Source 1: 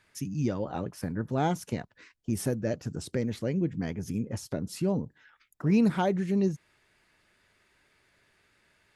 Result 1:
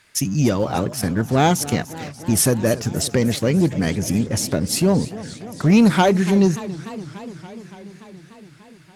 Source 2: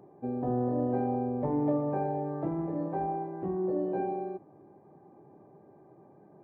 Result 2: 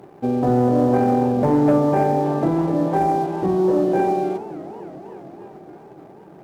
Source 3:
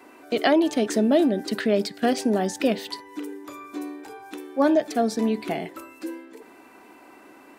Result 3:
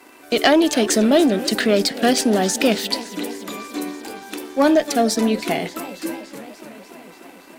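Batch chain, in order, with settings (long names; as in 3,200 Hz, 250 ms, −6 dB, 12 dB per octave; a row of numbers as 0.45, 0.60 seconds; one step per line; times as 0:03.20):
leveller curve on the samples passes 1
high-shelf EQ 2,300 Hz +9 dB
harmonic generator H 2 −21 dB, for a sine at −3.5 dBFS
feedback echo with a swinging delay time 289 ms, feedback 75%, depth 218 cents, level −16.5 dB
loudness normalisation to −19 LKFS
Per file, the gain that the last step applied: +8.0, +9.0, +1.0 decibels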